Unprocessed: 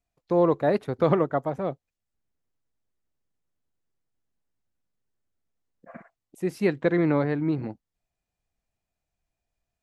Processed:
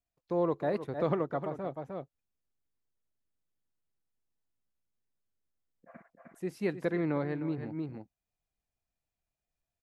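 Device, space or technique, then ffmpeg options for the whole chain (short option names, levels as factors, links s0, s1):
ducked delay: -filter_complex "[0:a]asplit=3[s0][s1][s2];[s1]adelay=307,volume=0.75[s3];[s2]apad=whole_len=446831[s4];[s3][s4]sidechaincompress=threshold=0.0178:ratio=8:attack=23:release=125[s5];[s0][s5]amix=inputs=2:normalize=0,volume=0.376"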